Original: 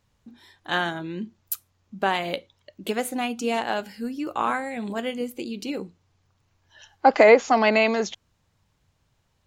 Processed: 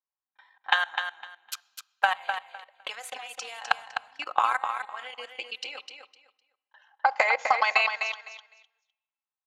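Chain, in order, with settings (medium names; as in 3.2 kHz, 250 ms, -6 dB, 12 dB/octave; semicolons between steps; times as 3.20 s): level-controlled noise filter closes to 1.2 kHz, open at -19.5 dBFS; high-pass 840 Hz 24 dB/octave; gate with hold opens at -58 dBFS; comb 3.8 ms, depth 46%; in parallel at -1 dB: peak limiter -16 dBFS, peak gain reduction 10 dB; on the sum: level held to a coarse grid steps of 21 dB; transient shaper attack +10 dB, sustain -6 dB; compression 10:1, threshold -18 dBFS, peak gain reduction 9 dB; feedback delay 254 ms, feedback 20%, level -7 dB; on a send at -21 dB: reverberation RT60 1.1 s, pre-delay 3 ms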